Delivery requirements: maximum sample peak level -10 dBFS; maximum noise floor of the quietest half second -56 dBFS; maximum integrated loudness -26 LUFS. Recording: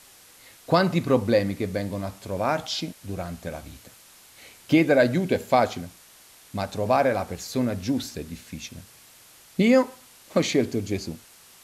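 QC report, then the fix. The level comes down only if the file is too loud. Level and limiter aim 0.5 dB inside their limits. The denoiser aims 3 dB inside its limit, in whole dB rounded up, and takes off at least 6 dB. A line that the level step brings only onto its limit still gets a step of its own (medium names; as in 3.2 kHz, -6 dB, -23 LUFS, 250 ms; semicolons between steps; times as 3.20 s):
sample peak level -7.5 dBFS: fail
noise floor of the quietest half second -52 dBFS: fail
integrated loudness -24.5 LUFS: fail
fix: noise reduction 6 dB, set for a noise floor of -52 dBFS; trim -2 dB; peak limiter -10.5 dBFS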